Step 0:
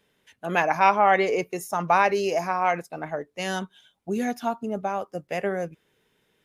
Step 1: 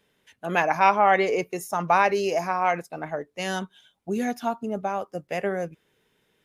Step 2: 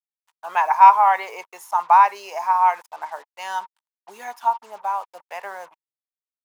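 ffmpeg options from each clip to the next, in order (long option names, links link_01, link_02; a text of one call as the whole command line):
ffmpeg -i in.wav -af anull out.wav
ffmpeg -i in.wav -af "acrusher=bits=6:mix=0:aa=0.5,highpass=frequency=940:width_type=q:width=8.1,volume=-5dB" out.wav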